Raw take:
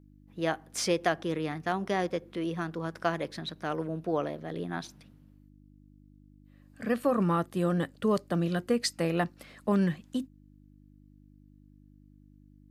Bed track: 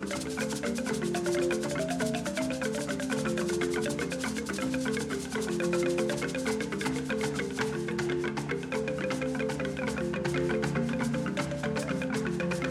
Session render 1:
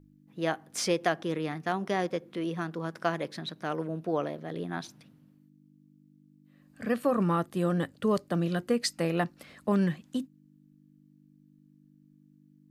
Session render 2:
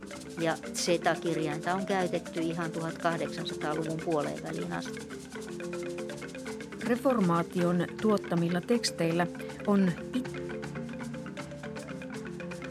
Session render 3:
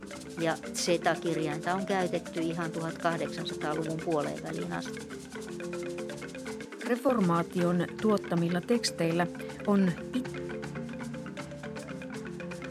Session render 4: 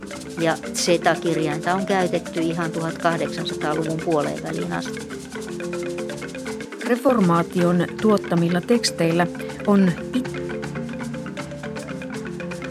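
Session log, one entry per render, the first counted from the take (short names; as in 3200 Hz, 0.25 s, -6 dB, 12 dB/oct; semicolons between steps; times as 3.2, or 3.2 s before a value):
de-hum 50 Hz, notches 2
add bed track -8.5 dB
6.65–7.09 steep high-pass 230 Hz 48 dB/oct
gain +9 dB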